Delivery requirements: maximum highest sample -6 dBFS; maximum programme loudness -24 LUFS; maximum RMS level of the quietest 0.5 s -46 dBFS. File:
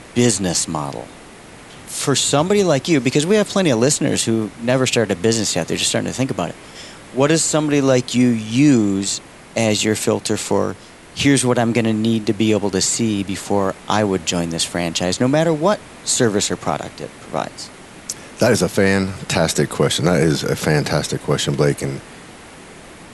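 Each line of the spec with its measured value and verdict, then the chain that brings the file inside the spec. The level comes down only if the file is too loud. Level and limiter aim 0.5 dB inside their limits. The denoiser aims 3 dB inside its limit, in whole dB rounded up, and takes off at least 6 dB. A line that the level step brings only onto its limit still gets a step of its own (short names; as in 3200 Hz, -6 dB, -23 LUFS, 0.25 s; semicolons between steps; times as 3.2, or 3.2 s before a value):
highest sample -2.0 dBFS: fail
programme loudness -18.0 LUFS: fail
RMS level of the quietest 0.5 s -40 dBFS: fail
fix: gain -6.5 dB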